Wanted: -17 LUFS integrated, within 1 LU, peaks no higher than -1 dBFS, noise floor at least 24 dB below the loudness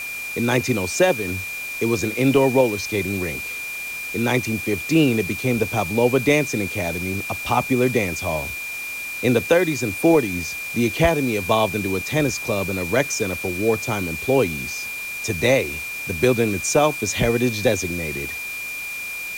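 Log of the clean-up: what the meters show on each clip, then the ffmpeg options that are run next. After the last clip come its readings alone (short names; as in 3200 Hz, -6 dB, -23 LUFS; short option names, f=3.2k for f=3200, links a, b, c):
steady tone 2400 Hz; tone level -28 dBFS; noise floor -30 dBFS; noise floor target -46 dBFS; loudness -21.5 LUFS; peak -6.0 dBFS; loudness target -17.0 LUFS
-> -af "bandreject=f=2.4k:w=30"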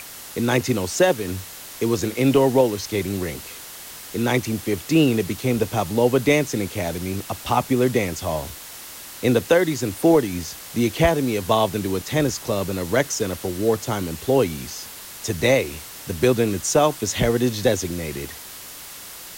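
steady tone none; noise floor -39 dBFS; noise floor target -46 dBFS
-> -af "afftdn=nr=7:nf=-39"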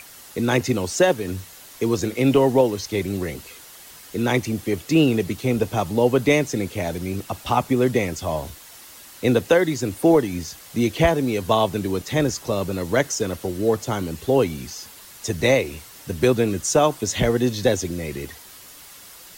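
noise floor -44 dBFS; noise floor target -46 dBFS
-> -af "afftdn=nr=6:nf=-44"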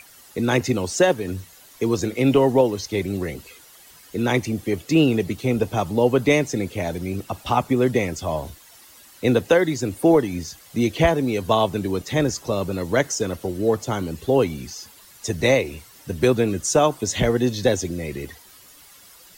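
noise floor -49 dBFS; loudness -22.0 LUFS; peak -6.5 dBFS; loudness target -17.0 LUFS
-> -af "volume=5dB"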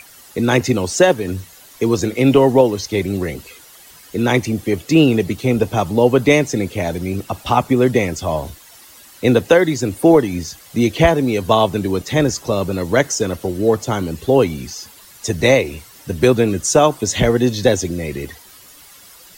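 loudness -17.0 LUFS; peak -1.5 dBFS; noise floor -44 dBFS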